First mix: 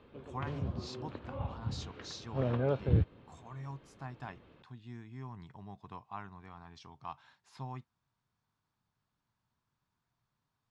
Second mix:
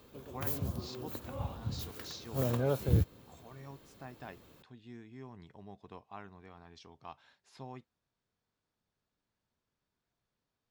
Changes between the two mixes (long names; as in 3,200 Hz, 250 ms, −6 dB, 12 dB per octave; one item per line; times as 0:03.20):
speech: add octave-band graphic EQ 125/500/1,000 Hz −8/+7/−8 dB
background: remove low-pass filter 3,200 Hz 24 dB per octave